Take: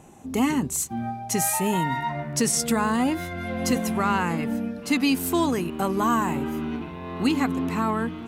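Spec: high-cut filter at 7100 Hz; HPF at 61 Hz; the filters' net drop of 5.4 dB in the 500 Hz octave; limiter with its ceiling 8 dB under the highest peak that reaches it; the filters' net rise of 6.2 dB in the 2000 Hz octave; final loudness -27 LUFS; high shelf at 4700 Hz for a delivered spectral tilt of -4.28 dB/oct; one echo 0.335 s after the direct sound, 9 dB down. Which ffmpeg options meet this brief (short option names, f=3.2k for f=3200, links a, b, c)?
-af "highpass=61,lowpass=7.1k,equalizer=f=500:t=o:g=-8,equalizer=f=2k:t=o:g=9,highshelf=f=4.7k:g=-4.5,alimiter=limit=-17dB:level=0:latency=1,aecho=1:1:335:0.355"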